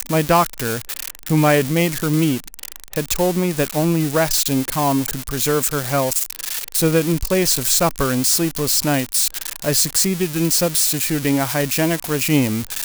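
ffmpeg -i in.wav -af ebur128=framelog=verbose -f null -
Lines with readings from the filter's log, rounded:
Integrated loudness:
  I:         -18.1 LUFS
  Threshold: -28.1 LUFS
Loudness range:
  LRA:         2.4 LU
  Threshold: -38.1 LUFS
  LRA low:   -19.3 LUFS
  LRA high:  -17.0 LUFS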